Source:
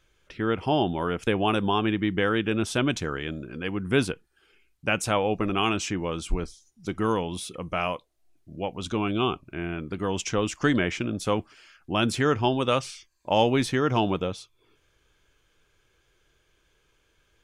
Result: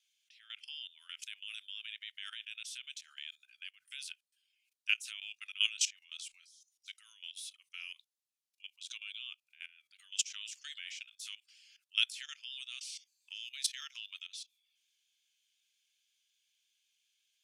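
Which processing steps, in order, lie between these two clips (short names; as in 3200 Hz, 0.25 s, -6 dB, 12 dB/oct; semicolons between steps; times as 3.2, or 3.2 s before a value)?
rotary speaker horn 0.8 Hz, later 5.5 Hz, at 3.39; inverse Chebyshev high-pass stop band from 630 Hz, stop band 70 dB; level quantiser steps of 17 dB; gain +6 dB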